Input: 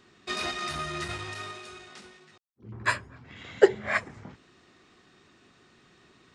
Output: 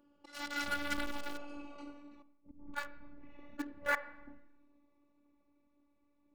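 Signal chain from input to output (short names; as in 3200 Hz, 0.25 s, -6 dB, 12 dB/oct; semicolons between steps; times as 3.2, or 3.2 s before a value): Wiener smoothing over 25 samples; Doppler pass-by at 1.84, 37 m/s, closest 19 m; dynamic EQ 1400 Hz, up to +5 dB, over -48 dBFS, Q 1.5; auto swell 0.315 s; robotiser 288 Hz; in parallel at -9 dB: bit-crush 7-bit; on the sum: flange 1.9 Hz, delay 0.1 ms, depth 2.5 ms, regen -47%; on a send at -10.5 dB: air absorption 380 m + reverb RT60 0.90 s, pre-delay 28 ms; on the sum: gain +11.5 dB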